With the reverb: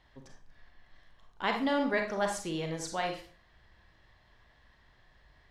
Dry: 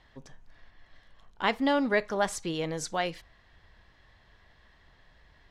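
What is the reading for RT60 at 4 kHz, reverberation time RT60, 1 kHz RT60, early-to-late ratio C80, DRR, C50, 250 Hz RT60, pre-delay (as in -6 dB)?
0.35 s, 0.40 s, 0.40 s, 11.5 dB, 3.0 dB, 6.5 dB, 0.35 s, 33 ms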